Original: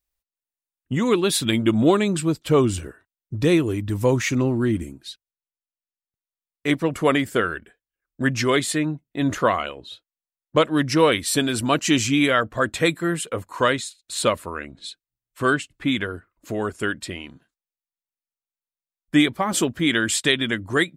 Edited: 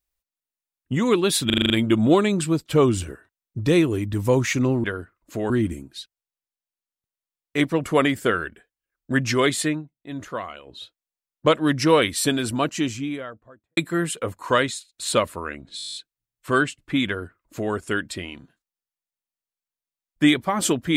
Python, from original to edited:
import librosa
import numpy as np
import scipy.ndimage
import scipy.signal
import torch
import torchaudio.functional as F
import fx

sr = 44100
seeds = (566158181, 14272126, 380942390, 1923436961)

y = fx.studio_fade_out(x, sr, start_s=11.2, length_s=1.67)
y = fx.edit(y, sr, fx.stutter(start_s=1.46, slice_s=0.04, count=7),
    fx.fade_down_up(start_s=8.78, length_s=1.09, db=-11.0, fade_s=0.15),
    fx.stutter(start_s=14.87, slice_s=0.02, count=10),
    fx.duplicate(start_s=15.99, length_s=0.66, to_s=4.6), tone=tone)